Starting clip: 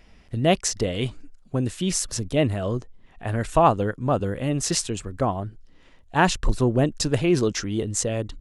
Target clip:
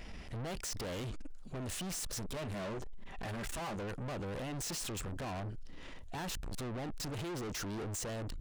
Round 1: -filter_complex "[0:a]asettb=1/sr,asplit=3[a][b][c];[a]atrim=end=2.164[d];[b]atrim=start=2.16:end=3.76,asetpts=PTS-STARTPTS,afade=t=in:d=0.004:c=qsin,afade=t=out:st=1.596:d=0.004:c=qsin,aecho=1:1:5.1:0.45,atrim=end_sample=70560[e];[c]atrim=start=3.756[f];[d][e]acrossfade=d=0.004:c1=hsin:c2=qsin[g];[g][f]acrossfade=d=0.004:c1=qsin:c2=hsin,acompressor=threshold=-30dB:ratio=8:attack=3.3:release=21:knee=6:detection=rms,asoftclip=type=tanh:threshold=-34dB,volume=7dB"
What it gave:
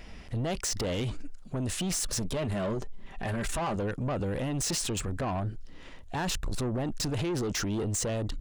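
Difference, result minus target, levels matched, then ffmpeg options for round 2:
soft clip: distortion -6 dB
-filter_complex "[0:a]asettb=1/sr,asplit=3[a][b][c];[a]atrim=end=2.164[d];[b]atrim=start=2.16:end=3.76,asetpts=PTS-STARTPTS,afade=t=in:d=0.004:c=qsin,afade=t=out:st=1.596:d=0.004:c=qsin,aecho=1:1:5.1:0.45,atrim=end_sample=70560[e];[c]atrim=start=3.756[f];[d][e]acrossfade=d=0.004:c1=hsin:c2=qsin[g];[g][f]acrossfade=d=0.004:c1=qsin:c2=hsin,acompressor=threshold=-30dB:ratio=8:attack=3.3:release=21:knee=6:detection=rms,asoftclip=type=tanh:threshold=-45.5dB,volume=7dB"

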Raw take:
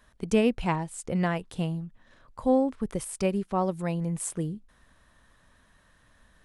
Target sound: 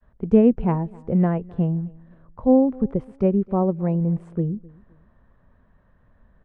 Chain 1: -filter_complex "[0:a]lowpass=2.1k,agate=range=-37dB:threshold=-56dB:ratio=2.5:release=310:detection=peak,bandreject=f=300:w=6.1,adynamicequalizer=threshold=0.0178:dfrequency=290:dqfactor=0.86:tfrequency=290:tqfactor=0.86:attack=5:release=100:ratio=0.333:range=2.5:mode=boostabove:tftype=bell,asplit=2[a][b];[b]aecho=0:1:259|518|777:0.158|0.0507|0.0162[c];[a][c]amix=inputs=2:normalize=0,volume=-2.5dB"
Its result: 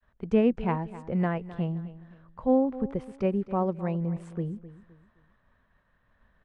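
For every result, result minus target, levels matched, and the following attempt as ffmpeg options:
echo-to-direct +8 dB; 1000 Hz band +4.5 dB
-filter_complex "[0:a]lowpass=2.1k,agate=range=-37dB:threshold=-56dB:ratio=2.5:release=310:detection=peak,bandreject=f=300:w=6.1,adynamicequalizer=threshold=0.0178:dfrequency=290:dqfactor=0.86:tfrequency=290:tqfactor=0.86:attack=5:release=100:ratio=0.333:range=2.5:mode=boostabove:tftype=bell,asplit=2[a][b];[b]aecho=0:1:259|518:0.0631|0.0202[c];[a][c]amix=inputs=2:normalize=0,volume=-2.5dB"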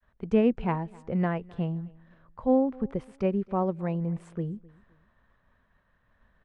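1000 Hz band +4.5 dB
-filter_complex "[0:a]lowpass=2.1k,tiltshelf=f=1.2k:g=8.5,agate=range=-37dB:threshold=-56dB:ratio=2.5:release=310:detection=peak,bandreject=f=300:w=6.1,adynamicequalizer=threshold=0.0178:dfrequency=290:dqfactor=0.86:tfrequency=290:tqfactor=0.86:attack=5:release=100:ratio=0.333:range=2.5:mode=boostabove:tftype=bell,asplit=2[a][b];[b]aecho=0:1:259|518:0.0631|0.0202[c];[a][c]amix=inputs=2:normalize=0,volume=-2.5dB"

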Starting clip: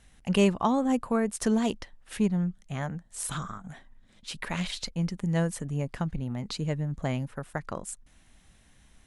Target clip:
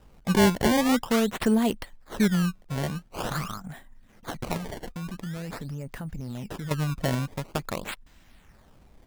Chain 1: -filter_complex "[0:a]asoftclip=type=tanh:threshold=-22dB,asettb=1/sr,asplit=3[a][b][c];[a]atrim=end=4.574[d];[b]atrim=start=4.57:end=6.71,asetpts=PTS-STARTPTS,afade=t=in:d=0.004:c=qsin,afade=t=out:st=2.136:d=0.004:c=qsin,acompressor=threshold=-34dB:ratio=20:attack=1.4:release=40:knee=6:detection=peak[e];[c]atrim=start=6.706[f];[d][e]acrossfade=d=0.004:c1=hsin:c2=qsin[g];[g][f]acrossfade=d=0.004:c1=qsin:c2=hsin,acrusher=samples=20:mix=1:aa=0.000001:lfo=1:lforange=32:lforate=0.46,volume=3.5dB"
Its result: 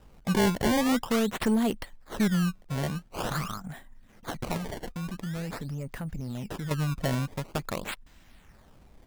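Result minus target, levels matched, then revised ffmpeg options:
soft clip: distortion +14 dB
-filter_complex "[0:a]asoftclip=type=tanh:threshold=-11.5dB,asettb=1/sr,asplit=3[a][b][c];[a]atrim=end=4.574[d];[b]atrim=start=4.57:end=6.71,asetpts=PTS-STARTPTS,afade=t=in:d=0.004:c=qsin,afade=t=out:st=2.136:d=0.004:c=qsin,acompressor=threshold=-34dB:ratio=20:attack=1.4:release=40:knee=6:detection=peak[e];[c]atrim=start=6.706[f];[d][e]acrossfade=d=0.004:c1=hsin:c2=qsin[g];[g][f]acrossfade=d=0.004:c1=qsin:c2=hsin,acrusher=samples=20:mix=1:aa=0.000001:lfo=1:lforange=32:lforate=0.46,volume=3.5dB"

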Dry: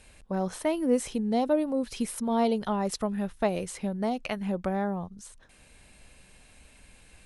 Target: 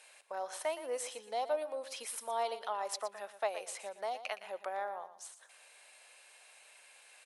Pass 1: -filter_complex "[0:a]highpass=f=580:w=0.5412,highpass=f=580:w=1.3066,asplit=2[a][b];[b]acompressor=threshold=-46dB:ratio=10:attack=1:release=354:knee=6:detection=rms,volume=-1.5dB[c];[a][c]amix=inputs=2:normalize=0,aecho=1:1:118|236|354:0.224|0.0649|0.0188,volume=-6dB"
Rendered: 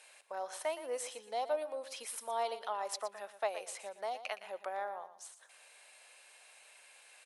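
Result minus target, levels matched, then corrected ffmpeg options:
compressor: peak gain reduction +6.5 dB
-filter_complex "[0:a]highpass=f=580:w=0.5412,highpass=f=580:w=1.3066,asplit=2[a][b];[b]acompressor=threshold=-39dB:ratio=10:attack=1:release=354:knee=6:detection=rms,volume=-1.5dB[c];[a][c]amix=inputs=2:normalize=0,aecho=1:1:118|236|354:0.224|0.0649|0.0188,volume=-6dB"

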